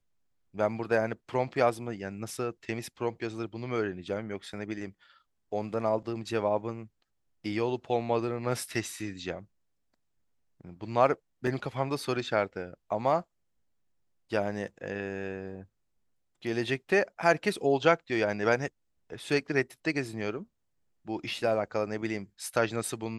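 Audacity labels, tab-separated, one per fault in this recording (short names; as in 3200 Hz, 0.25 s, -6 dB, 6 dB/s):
11.470000	11.470000	gap 3.8 ms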